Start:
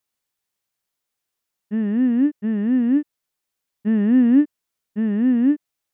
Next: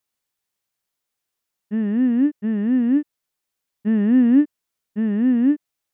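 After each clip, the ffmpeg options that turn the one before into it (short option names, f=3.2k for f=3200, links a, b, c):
-af anull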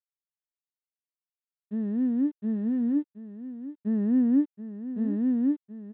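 -af "lowpass=1.1k,aresample=8000,aeval=exprs='sgn(val(0))*max(abs(val(0))-0.002,0)':c=same,aresample=44100,aecho=1:1:726:0.237,volume=-7.5dB"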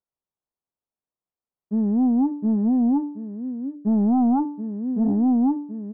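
-af "aeval=exprs='0.178*sin(PI/2*2*val(0)/0.178)':c=same,lowpass=f=1.1k:w=0.5412,lowpass=f=1.1k:w=1.3066,bandreject=f=292.1:t=h:w=4,bandreject=f=584.2:t=h:w=4,bandreject=f=876.3:t=h:w=4,bandreject=f=1.1684k:t=h:w=4,bandreject=f=1.4605k:t=h:w=4,bandreject=f=1.7526k:t=h:w=4,bandreject=f=2.0447k:t=h:w=4,bandreject=f=2.3368k:t=h:w=4,bandreject=f=2.6289k:t=h:w=4,bandreject=f=2.921k:t=h:w=4,bandreject=f=3.2131k:t=h:w=4,bandreject=f=3.5052k:t=h:w=4,bandreject=f=3.7973k:t=h:w=4,bandreject=f=4.0894k:t=h:w=4,bandreject=f=4.3815k:t=h:w=4,bandreject=f=4.6736k:t=h:w=4,bandreject=f=4.9657k:t=h:w=4,bandreject=f=5.2578k:t=h:w=4,bandreject=f=5.5499k:t=h:w=4,bandreject=f=5.842k:t=h:w=4,bandreject=f=6.1341k:t=h:w=4,bandreject=f=6.4262k:t=h:w=4,bandreject=f=6.7183k:t=h:w=4,bandreject=f=7.0104k:t=h:w=4,bandreject=f=7.3025k:t=h:w=4,bandreject=f=7.5946k:t=h:w=4,bandreject=f=7.8867k:t=h:w=4,bandreject=f=8.1788k:t=h:w=4,bandreject=f=8.4709k:t=h:w=4,bandreject=f=8.763k:t=h:w=4,bandreject=f=9.0551k:t=h:w=4,bandreject=f=9.3472k:t=h:w=4,bandreject=f=9.6393k:t=h:w=4,bandreject=f=9.9314k:t=h:w=4,bandreject=f=10.2235k:t=h:w=4,bandreject=f=10.5156k:t=h:w=4,bandreject=f=10.8077k:t=h:w=4,bandreject=f=11.0998k:t=h:w=4,bandreject=f=11.3919k:t=h:w=4,bandreject=f=11.684k:t=h:w=4,volume=-1dB"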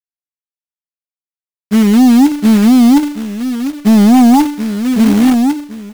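-af "acrusher=bits=9:dc=4:mix=0:aa=0.000001,dynaudnorm=f=400:g=5:m=9.5dB,acrusher=bits=3:mode=log:mix=0:aa=0.000001,volume=3dB"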